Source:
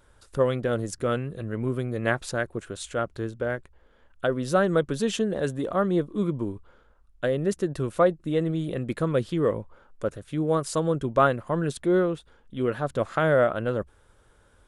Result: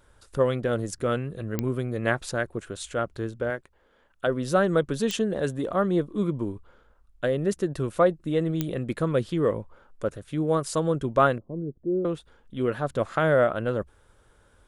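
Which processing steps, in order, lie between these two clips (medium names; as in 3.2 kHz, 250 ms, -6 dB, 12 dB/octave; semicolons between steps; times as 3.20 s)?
3.50–4.27 s: bass shelf 120 Hz -12 dB; 11.38–12.05 s: four-pole ladder low-pass 480 Hz, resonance 30%; clicks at 1.59/5.11/8.61 s, -12 dBFS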